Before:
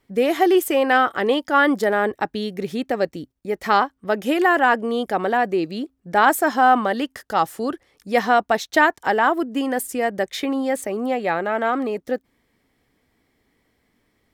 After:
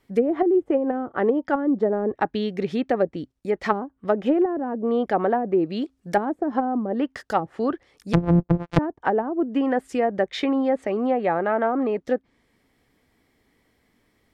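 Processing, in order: 8.13–8.79 s: sorted samples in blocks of 256 samples; low-pass that closes with the level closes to 330 Hz, closed at -14 dBFS; 5.82–6.65 s: treble shelf 2.7 kHz +9 dB; trim +1 dB

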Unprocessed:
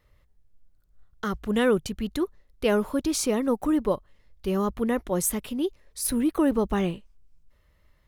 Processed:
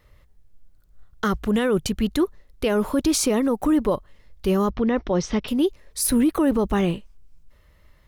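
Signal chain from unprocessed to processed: 4.70–5.48 s: Chebyshev low-pass 5.7 kHz, order 5; peak limiter -20 dBFS, peak gain reduction 9.5 dB; trim +7.5 dB

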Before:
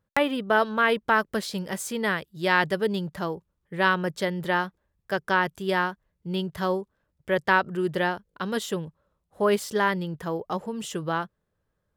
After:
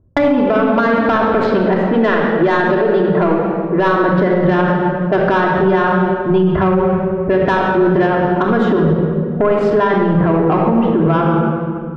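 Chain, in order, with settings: low-pass 1.3 kHz 12 dB/octave; level-controlled noise filter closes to 420 Hz, open at -23.5 dBFS; 1.34–3.88 s: high-pass 240 Hz 12 dB/octave; compression 8:1, threshold -29 dBFS, peak gain reduction 12 dB; saturation -25.5 dBFS, distortion -18 dB; reverberation RT60 2.1 s, pre-delay 3 ms, DRR -2 dB; loudness maximiser +26 dB; trim -4.5 dB

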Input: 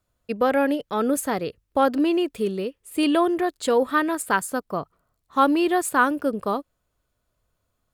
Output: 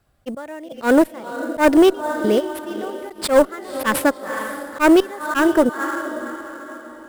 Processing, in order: tape speed +12%; trance gate "xx..xx..." 87 bpm -24 dB; on a send: echo that smears into a reverb 523 ms, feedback 42%, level -13.5 dB; on the sum: one-sided clip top -21 dBFS; in parallel at -3.5 dB: sample-rate reducer 8.9 kHz, jitter 20%; on the sum: slow attack 105 ms; trim +6.5 dB

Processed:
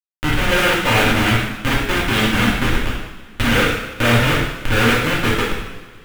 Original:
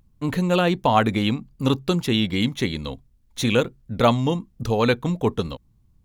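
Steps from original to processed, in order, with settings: dynamic bell 430 Hz, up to +4 dB, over -31 dBFS, Q 0.77; Schmitt trigger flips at -19.5 dBFS; upward compressor, threshold -24 dBFS; high-order bell 2.1 kHz +10 dB; two-slope reverb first 0.89 s, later 2.7 s, from -18 dB, DRR -6 dB; trim -2.5 dB

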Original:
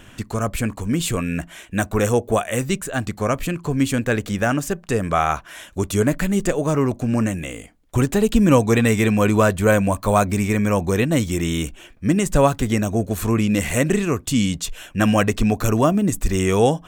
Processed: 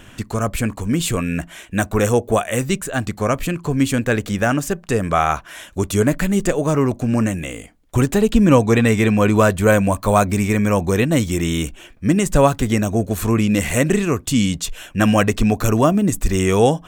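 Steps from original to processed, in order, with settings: 8.21–9.36 s: treble shelf 7.2 kHz -7 dB; trim +2 dB

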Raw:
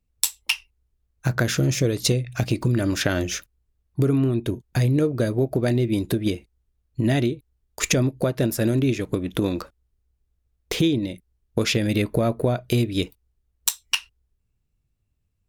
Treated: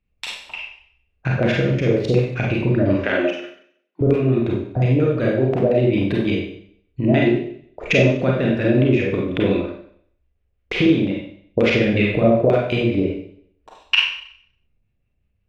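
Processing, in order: LFO low-pass square 5.6 Hz 600–2500 Hz; 3.02–4.01 s: steep high-pass 220 Hz 48 dB/octave; Schroeder reverb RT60 0.61 s, combs from 31 ms, DRR -3 dB; trim -1 dB

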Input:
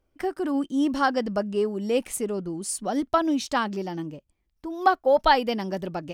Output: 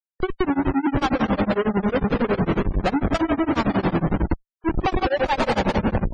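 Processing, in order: fade out at the end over 0.68 s; low-pass 2.3 kHz 12 dB/octave; bass shelf 110 Hz +9 dB; feedback delay 409 ms, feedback 31%, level -18 dB; on a send at -4.5 dB: reverberation RT60 1.8 s, pre-delay 95 ms; on the sum: Schmitt trigger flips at -29 dBFS; spectral gate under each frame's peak -25 dB strong; granulator 100 ms, grains 11 per s, spray 13 ms, pitch spread up and down by 0 st; trim +7.5 dB

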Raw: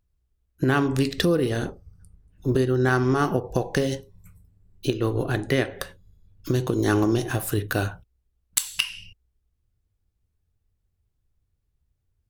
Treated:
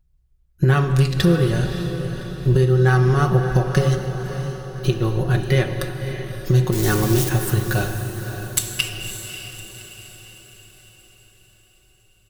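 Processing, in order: 6.72–7.29 s: zero-crossing glitches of -15 dBFS; resonant low shelf 170 Hz +8.5 dB, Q 1.5; comb 5.4 ms; on a send: echo that smears into a reverb 582 ms, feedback 50%, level -9 dB; on the sum: gated-style reverb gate 320 ms flat, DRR 9 dB

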